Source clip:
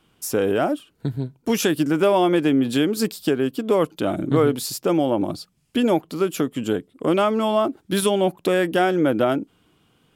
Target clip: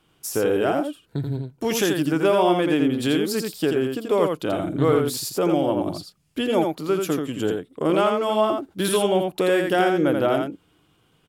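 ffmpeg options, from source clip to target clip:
ffmpeg -i in.wav -af "equalizer=frequency=230:width_type=o:width=0.36:gain=-5.5,atempo=0.9,aecho=1:1:84:0.596,volume=-1.5dB" out.wav

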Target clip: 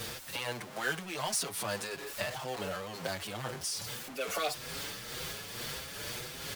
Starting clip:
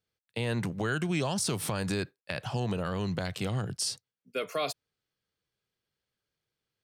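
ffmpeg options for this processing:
ffmpeg -i in.wav -filter_complex "[0:a]aeval=exprs='val(0)+0.5*0.0398*sgn(val(0))':channel_layout=same,acrossover=split=390[link_01][link_02];[link_01]acompressor=threshold=-42dB:ratio=6[link_03];[link_03][link_02]amix=inputs=2:normalize=0,tremolo=f=2.2:d=0.47,asetrate=45938,aresample=44100,asplit=2[link_04][link_05];[link_05]adelay=6.4,afreqshift=1.8[link_06];[link_04][link_06]amix=inputs=2:normalize=1" out.wav

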